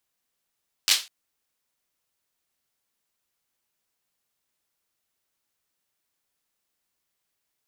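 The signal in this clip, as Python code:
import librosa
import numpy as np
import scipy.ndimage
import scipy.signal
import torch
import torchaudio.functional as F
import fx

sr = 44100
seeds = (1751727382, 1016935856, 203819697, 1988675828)

y = fx.drum_clap(sr, seeds[0], length_s=0.2, bursts=4, spacing_ms=10, hz=3800.0, decay_s=0.27)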